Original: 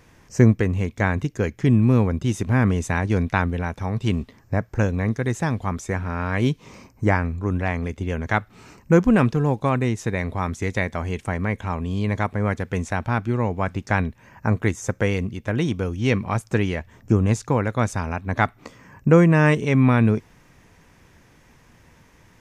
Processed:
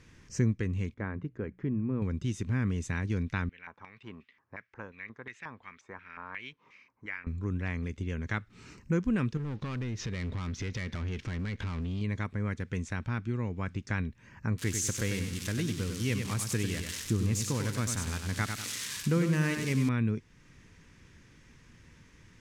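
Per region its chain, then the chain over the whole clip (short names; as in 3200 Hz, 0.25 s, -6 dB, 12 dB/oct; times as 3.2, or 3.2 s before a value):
0.94–2.02 LPF 1200 Hz + low shelf 160 Hz -10.5 dB + notches 60/120/180 Hz
3.49–7.27 high shelf 5000 Hz -7 dB + LFO band-pass square 2.8 Hz 950–2300 Hz
9.37–12.01 compressor 3:1, threshold -33 dBFS + steep low-pass 5700 Hz + sample leveller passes 3
14.58–19.89 switching spikes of -15 dBFS + feedback echo 96 ms, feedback 34%, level -7 dB
whole clip: LPF 7900 Hz 12 dB/oct; bell 730 Hz -13 dB 1.1 oct; compressor 1.5:1, threshold -38 dBFS; gain -2 dB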